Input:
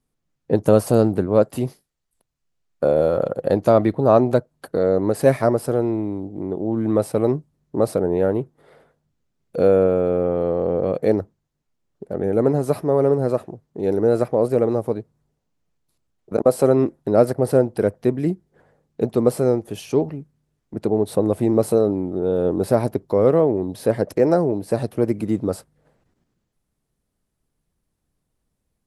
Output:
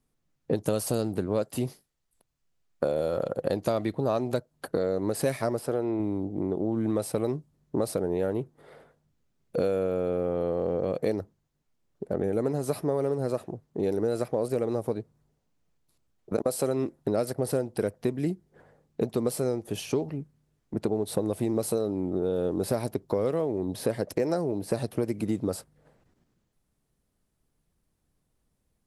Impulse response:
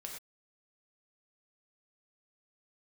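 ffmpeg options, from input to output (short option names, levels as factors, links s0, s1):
-filter_complex "[0:a]asettb=1/sr,asplit=3[s0][s1][s2];[s0]atrim=end=5.594[s3];[s1]atrim=start=5.59:end=6,asetpts=PTS-STARTPTS,afade=t=in:d=0.004:c=qsin,afade=t=out:st=0.406:d=0.004:c=qsin,bass=f=250:g=-6,treble=f=4000:g=-7[s4];[s2]atrim=start=5.996[s5];[s3][s4]acrossfade=d=0.004:c1=hsin:c2=qsin[s6];[s6][s5]acrossfade=d=0.004:c1=qsin:c2=hsin,acrossover=split=2600[s7][s8];[s7]acompressor=threshold=0.0631:ratio=6[s9];[s9][s8]amix=inputs=2:normalize=0"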